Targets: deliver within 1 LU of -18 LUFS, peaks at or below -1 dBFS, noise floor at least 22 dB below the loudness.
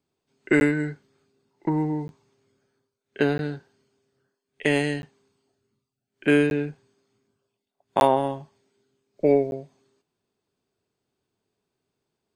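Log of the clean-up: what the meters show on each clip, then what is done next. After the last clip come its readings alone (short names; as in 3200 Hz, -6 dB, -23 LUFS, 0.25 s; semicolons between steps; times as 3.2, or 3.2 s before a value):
dropouts 7; longest dropout 11 ms; loudness -24.5 LUFS; peak -5.0 dBFS; loudness target -18.0 LUFS
-> interpolate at 0.6/2.08/3.38/5.02/6.5/8/9.51, 11 ms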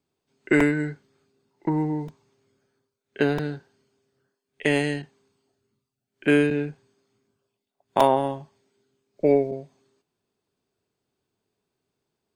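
dropouts 0; loudness -24.5 LUFS; peak -5.0 dBFS; loudness target -18.0 LUFS
-> gain +6.5 dB; limiter -1 dBFS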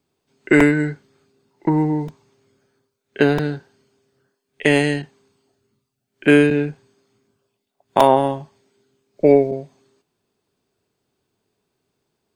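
loudness -18.0 LUFS; peak -1.0 dBFS; noise floor -77 dBFS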